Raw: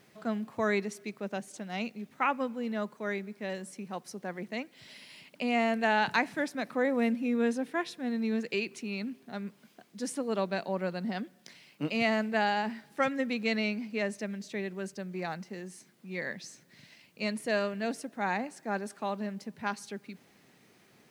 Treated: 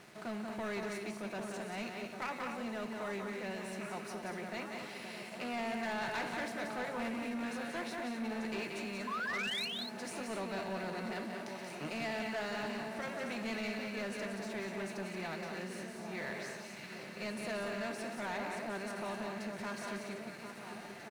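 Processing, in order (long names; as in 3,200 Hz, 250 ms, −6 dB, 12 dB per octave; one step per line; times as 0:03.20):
compressor on every frequency bin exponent 0.6
notch filter 470 Hz, Q 12
tuned comb filter 540 Hz, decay 0.51 s, mix 80%
delay that swaps between a low-pass and a high-pass 796 ms, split 1,300 Hz, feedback 80%, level −9 dB
sound drawn into the spectrogram rise, 0:09.07–0:09.66, 1,000–4,400 Hz −39 dBFS
notch comb filter 270 Hz
loudspeakers that aren't time-aligned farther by 62 metres −6 dB, 82 metres −9 dB
leveller curve on the samples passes 3
level −7 dB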